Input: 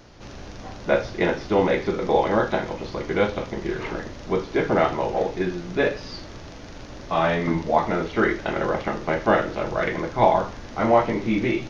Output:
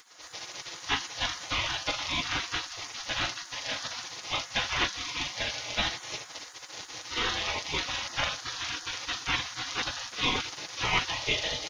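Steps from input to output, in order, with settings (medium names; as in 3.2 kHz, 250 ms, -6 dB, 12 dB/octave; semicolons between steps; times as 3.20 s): resonant high shelf 2 kHz +7.5 dB, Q 3; comb 4.8 ms, depth 77%; spectral gate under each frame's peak -20 dB weak; trim +2.5 dB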